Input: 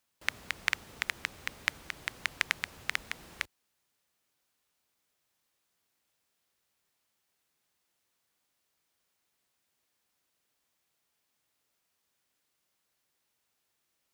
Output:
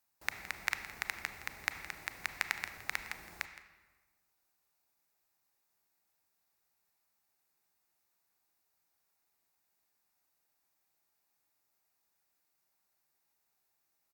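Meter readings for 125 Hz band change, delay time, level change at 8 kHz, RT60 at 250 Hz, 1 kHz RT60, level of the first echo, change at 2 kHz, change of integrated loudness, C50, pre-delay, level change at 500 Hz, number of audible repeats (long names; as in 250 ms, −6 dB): −4.0 dB, 166 ms, −3.0 dB, 1.5 s, 1.3 s, −16.0 dB, −4.0 dB, −4.0 dB, 9.5 dB, 28 ms, −3.5 dB, 1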